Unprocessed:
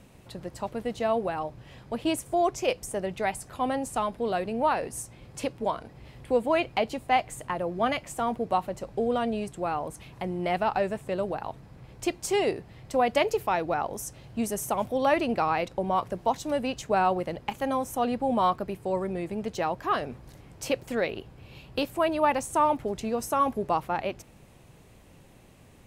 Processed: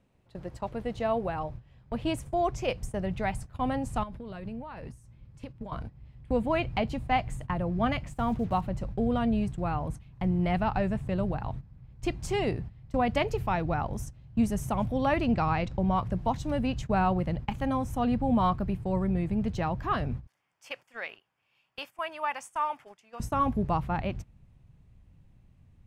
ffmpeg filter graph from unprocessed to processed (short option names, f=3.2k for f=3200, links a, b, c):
-filter_complex "[0:a]asettb=1/sr,asplit=3[a][b][c];[a]atrim=end=4.034[d];[b]atrim=start=4.03:end=5.72,asetpts=PTS-STARTPTS,afade=t=in:d=0.004:c=qsin,afade=t=out:st=1.686:d=0.004:c=qsin,bandreject=f=730:w=9.8,acompressor=threshold=-36dB:ratio=8:attack=3.2:release=140:knee=1:detection=peak[e];[c]atrim=start=5.716[f];[d][e]acrossfade=d=0.004:c1=hsin:c2=qsin[g];[g][f]acrossfade=d=0.004:c1=qsin:c2=hsin,asettb=1/sr,asplit=3[h][i][j];[h]atrim=end=8.114[k];[i]atrim=start=8.11:end=8.61,asetpts=PTS-STARTPTS,afade=t=in:d=0.004:c=qsin,afade=t=out:st=0.496:d=0.004:c=qsin,acrusher=bits=7:mix=0:aa=0.5,highshelf=f=12k:g=2.5[l];[j]atrim=start=8.606[m];[k][l]acrossfade=d=0.004:c1=hsin:c2=qsin[n];[n][m]acrossfade=d=0.004:c1=qsin:c2=hsin,asettb=1/sr,asplit=3[o][p][q];[o]atrim=end=15.244[r];[p]atrim=start=15.24:end=15.98,asetpts=PTS-STARTPTS,afade=t=in:d=0.004:c=qsin,afade=t=out:st=0.736:d=0.004:c=qsin,lowpass=f=7.6k:w=0.5412,lowpass=f=7.6k:w=1.3066,highshelf=f=5.9k:g=5.5[s];[q]atrim=start=15.976[t];[r][s]acrossfade=d=0.004:c1=hsin:c2=qsin[u];[u][t]acrossfade=d=0.004:c1=qsin:c2=hsin,asettb=1/sr,asplit=3[v][w][x];[v]atrim=end=20.274[y];[w]atrim=start=20.27:end=23.2,asetpts=PTS-STARTPTS,afade=t=in:d=0.004:c=qsin,afade=t=out:st=2.926:d=0.004:c=qsin,highpass=1k,bandreject=f=4k:w=5[z];[x]atrim=start=23.196[aa];[y][z]acrossfade=d=0.004:c1=hsin:c2=qsin[ab];[ab][aa]acrossfade=d=0.004:c1=qsin:c2=hsin,lowpass=f=3.2k:p=1,agate=range=-14dB:threshold=-42dB:ratio=16:detection=peak,asubboost=boost=7.5:cutoff=150,volume=-1dB"